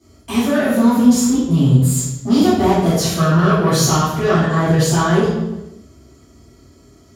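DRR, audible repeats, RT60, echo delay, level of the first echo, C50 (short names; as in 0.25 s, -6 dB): -16.5 dB, none, 1.1 s, none, none, -0.5 dB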